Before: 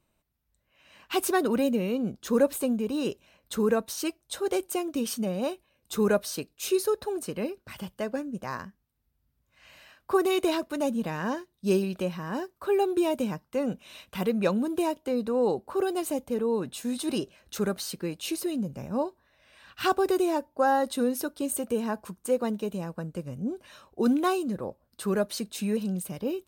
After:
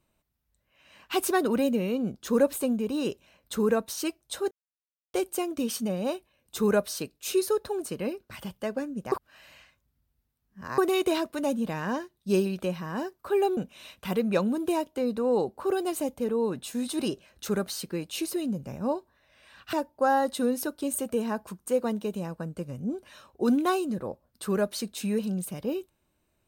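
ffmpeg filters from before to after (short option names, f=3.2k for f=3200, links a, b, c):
-filter_complex "[0:a]asplit=6[a][b][c][d][e][f];[a]atrim=end=4.51,asetpts=PTS-STARTPTS,afade=t=out:st=4.506:d=0.004:c=hsin,apad=pad_dur=0.63[g];[b]atrim=start=4.51:end=8.492,asetpts=PTS-STARTPTS,afade=t=in:d=0.004:c=hsin[h];[c]atrim=start=8.488:end=10.152,asetpts=PTS-STARTPTS,areverse[i];[d]atrim=start=10.148:end=12.942[j];[e]atrim=start=13.668:end=19.832[k];[f]atrim=start=20.308[l];[g][h]concat=n=2:v=0:a=1[m];[m][i]acrossfade=d=0.004:c1=hsin:c2=hsin[n];[n][j]acrossfade=d=0.004:c1=hsin:c2=hsin[o];[o][k]acrossfade=d=0.004:c1=hsin:c2=hsin[p];[p][l]acrossfade=d=0.004:c1=hsin:c2=hsin"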